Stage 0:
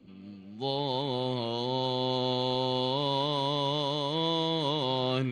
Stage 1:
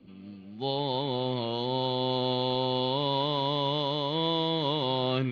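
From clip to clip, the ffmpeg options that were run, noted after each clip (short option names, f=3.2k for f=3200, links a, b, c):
-af "lowpass=f=4.6k:w=0.5412,lowpass=f=4.6k:w=1.3066,volume=1dB"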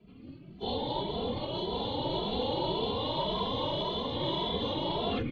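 -filter_complex "[0:a]afftfilt=real='hypot(re,im)*cos(2*PI*random(0))':imag='hypot(re,im)*sin(2*PI*random(1))':win_size=512:overlap=0.75,asplit=2[a][b];[b]adelay=2.6,afreqshift=1.8[c];[a][c]amix=inputs=2:normalize=1,volume=5.5dB"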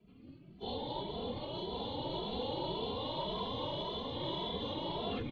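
-af "aecho=1:1:562:0.224,volume=-6.5dB"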